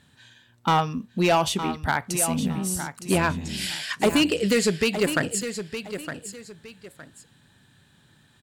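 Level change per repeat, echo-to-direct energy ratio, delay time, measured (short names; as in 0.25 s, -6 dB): -11.0 dB, -9.5 dB, 0.913 s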